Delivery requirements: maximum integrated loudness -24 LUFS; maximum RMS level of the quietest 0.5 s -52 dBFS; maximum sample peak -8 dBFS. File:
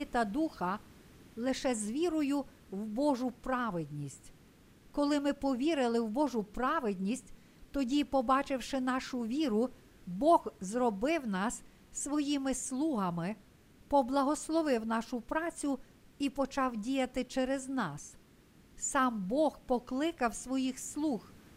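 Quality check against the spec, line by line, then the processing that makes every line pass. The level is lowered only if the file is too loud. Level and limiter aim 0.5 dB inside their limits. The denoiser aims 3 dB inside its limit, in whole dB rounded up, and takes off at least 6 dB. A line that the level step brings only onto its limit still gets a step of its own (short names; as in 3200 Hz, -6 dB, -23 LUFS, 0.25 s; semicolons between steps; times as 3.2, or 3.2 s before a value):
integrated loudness -33.5 LUFS: OK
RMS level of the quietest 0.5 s -61 dBFS: OK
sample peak -15.5 dBFS: OK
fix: none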